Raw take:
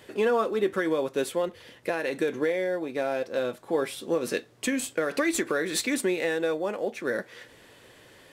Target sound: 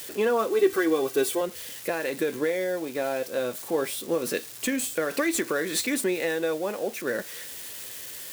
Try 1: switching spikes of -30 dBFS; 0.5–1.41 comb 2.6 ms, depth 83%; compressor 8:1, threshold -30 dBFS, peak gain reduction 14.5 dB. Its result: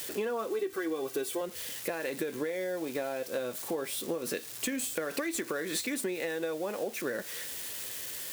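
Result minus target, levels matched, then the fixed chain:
compressor: peak gain reduction +14.5 dB
switching spikes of -30 dBFS; 0.5–1.41 comb 2.6 ms, depth 83%

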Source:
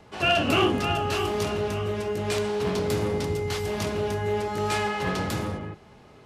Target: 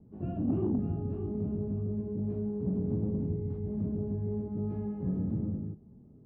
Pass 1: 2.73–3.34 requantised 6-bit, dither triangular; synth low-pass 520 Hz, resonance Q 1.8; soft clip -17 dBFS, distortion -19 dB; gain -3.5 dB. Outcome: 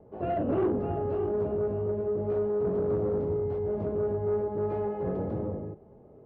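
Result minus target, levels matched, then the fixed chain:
500 Hz band +8.0 dB
2.73–3.34 requantised 6-bit, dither triangular; synth low-pass 230 Hz, resonance Q 1.8; soft clip -17 dBFS, distortion -22 dB; gain -3.5 dB

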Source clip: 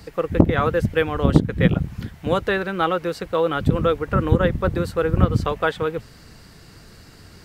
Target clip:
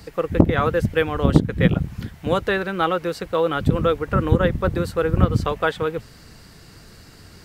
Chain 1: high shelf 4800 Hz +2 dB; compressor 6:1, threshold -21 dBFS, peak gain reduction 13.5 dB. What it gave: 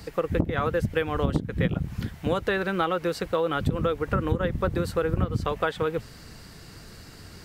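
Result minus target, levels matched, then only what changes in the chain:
compressor: peak gain reduction +13.5 dB
remove: compressor 6:1, threshold -21 dBFS, peak gain reduction 13.5 dB

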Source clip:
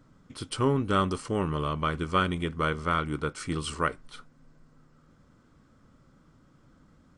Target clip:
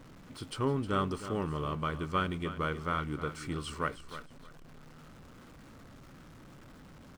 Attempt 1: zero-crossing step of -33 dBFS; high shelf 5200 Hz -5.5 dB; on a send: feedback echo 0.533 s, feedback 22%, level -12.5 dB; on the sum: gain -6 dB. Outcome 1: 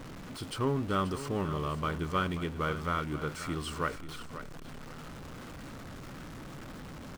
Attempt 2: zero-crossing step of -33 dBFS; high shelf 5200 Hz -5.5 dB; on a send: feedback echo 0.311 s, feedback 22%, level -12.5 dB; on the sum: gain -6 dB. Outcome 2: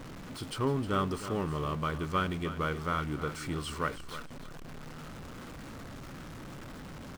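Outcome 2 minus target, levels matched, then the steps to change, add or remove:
zero-crossing step: distortion +8 dB
change: zero-crossing step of -42.5 dBFS

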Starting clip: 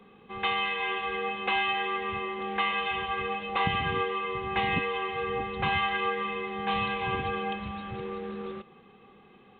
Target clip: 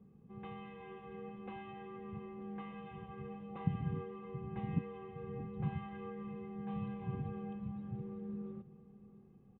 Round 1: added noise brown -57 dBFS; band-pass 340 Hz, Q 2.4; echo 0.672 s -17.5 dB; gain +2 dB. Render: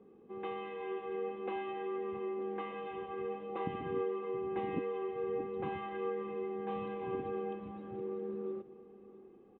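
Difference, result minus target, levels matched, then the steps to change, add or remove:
125 Hz band -15.0 dB
change: band-pass 150 Hz, Q 2.4

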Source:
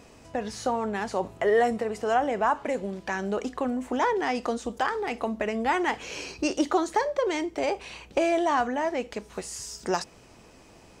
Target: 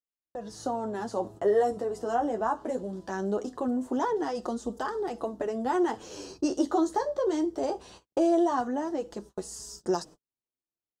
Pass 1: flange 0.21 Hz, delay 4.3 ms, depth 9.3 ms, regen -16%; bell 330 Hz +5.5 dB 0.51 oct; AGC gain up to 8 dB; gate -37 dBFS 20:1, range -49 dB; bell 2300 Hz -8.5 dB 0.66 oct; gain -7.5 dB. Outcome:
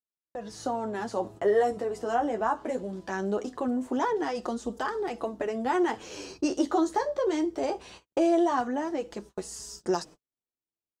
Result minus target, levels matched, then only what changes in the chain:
2000 Hz band +4.0 dB
change: second bell 2300 Hz -19 dB 0.66 oct

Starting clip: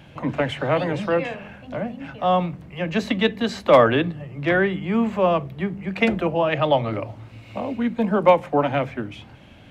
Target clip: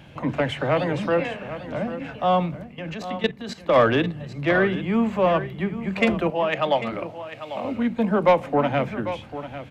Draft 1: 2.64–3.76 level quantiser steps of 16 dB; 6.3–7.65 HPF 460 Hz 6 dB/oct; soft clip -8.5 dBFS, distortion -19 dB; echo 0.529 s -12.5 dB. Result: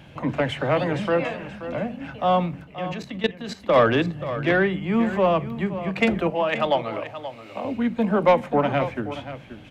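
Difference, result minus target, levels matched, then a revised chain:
echo 0.267 s early
2.64–3.76 level quantiser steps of 16 dB; 6.3–7.65 HPF 460 Hz 6 dB/oct; soft clip -8.5 dBFS, distortion -19 dB; echo 0.796 s -12.5 dB

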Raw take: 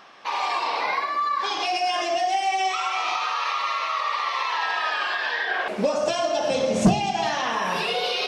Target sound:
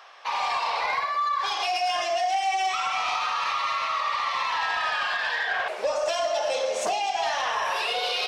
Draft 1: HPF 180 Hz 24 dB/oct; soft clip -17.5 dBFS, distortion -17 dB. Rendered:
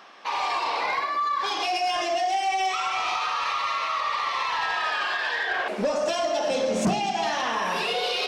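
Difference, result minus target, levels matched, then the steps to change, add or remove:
250 Hz band +18.0 dB
change: HPF 510 Hz 24 dB/oct

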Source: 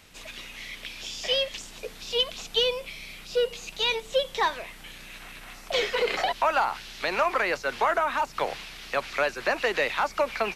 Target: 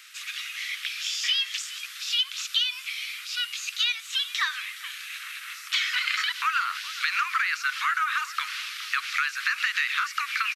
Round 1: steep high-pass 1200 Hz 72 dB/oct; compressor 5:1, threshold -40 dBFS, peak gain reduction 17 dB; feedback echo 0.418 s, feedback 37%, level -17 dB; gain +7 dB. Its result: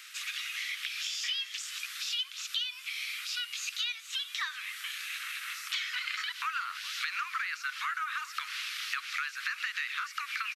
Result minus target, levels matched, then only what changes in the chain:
compressor: peak gain reduction +9 dB
change: compressor 5:1, threshold -29 dBFS, peak gain reduction 8 dB

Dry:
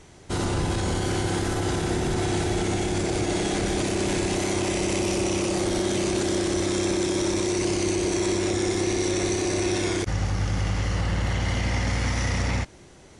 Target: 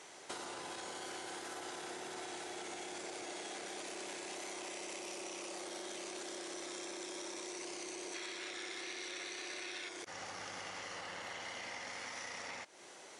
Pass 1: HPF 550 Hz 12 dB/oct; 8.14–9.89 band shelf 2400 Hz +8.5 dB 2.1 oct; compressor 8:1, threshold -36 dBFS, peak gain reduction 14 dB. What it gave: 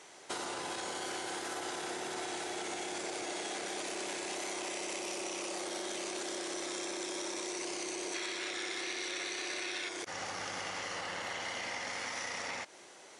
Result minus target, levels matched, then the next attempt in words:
compressor: peak gain reduction -6 dB
HPF 550 Hz 12 dB/oct; 8.14–9.89 band shelf 2400 Hz +8.5 dB 2.1 oct; compressor 8:1, threshold -43 dBFS, peak gain reduction 20 dB

